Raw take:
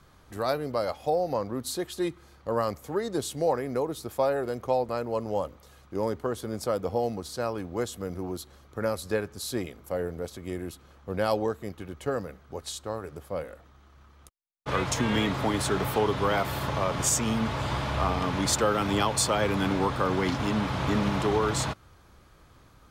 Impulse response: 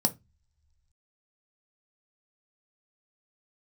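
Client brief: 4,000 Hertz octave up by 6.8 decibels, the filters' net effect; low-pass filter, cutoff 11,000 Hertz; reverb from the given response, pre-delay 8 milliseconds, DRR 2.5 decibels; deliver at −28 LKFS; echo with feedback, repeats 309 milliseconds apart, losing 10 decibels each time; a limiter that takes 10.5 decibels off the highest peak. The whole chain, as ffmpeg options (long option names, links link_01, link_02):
-filter_complex "[0:a]lowpass=11000,equalizer=frequency=4000:width_type=o:gain=8.5,alimiter=limit=-19.5dB:level=0:latency=1,aecho=1:1:309|618|927|1236:0.316|0.101|0.0324|0.0104,asplit=2[link_01][link_02];[1:a]atrim=start_sample=2205,adelay=8[link_03];[link_02][link_03]afir=irnorm=-1:irlink=0,volume=-10dB[link_04];[link_01][link_04]amix=inputs=2:normalize=0,volume=-1.5dB"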